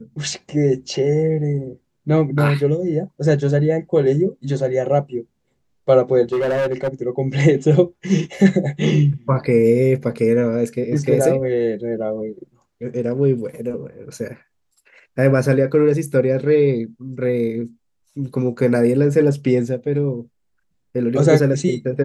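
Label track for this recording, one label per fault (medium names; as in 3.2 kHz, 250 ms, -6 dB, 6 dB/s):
6.330000	6.890000	clipped -16 dBFS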